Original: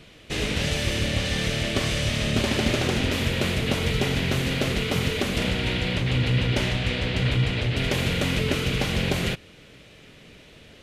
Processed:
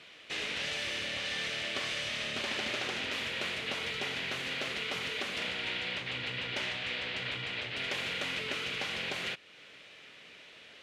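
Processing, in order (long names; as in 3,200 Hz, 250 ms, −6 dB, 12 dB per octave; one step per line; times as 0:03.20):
in parallel at +2 dB: downward compressor, threshold −38 dBFS, peak gain reduction 18.5 dB
on the sum: resonant band-pass 2,200 Hz, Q 0.55
level −7 dB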